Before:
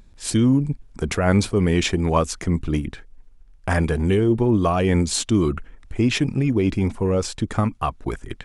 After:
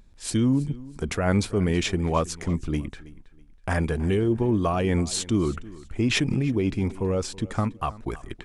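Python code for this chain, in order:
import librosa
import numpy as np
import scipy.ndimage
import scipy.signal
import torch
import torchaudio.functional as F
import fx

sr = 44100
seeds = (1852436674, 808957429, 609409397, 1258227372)

y = fx.echo_feedback(x, sr, ms=324, feedback_pct=29, wet_db=-19.5)
y = fx.pre_swell(y, sr, db_per_s=35.0, at=(6.06, 6.52))
y = y * 10.0 ** (-4.5 / 20.0)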